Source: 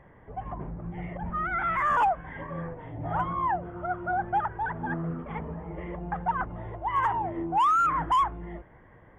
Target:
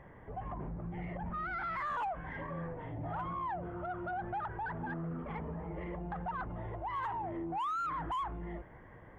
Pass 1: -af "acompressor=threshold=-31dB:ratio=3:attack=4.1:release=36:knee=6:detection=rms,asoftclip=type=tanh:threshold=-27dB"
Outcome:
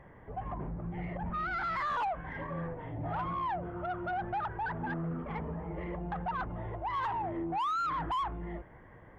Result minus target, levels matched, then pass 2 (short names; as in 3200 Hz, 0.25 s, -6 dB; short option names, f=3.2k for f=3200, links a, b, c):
compressor: peak gain reduction -4.5 dB
-af "acompressor=threshold=-38dB:ratio=3:attack=4.1:release=36:knee=6:detection=rms,asoftclip=type=tanh:threshold=-27dB"